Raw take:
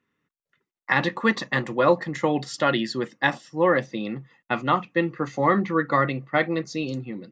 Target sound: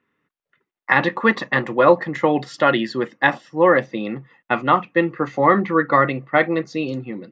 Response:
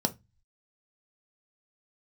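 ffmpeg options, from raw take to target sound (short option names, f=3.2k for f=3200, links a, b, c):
-af "bass=f=250:g=-5,treble=f=4k:g=-13,volume=6dB"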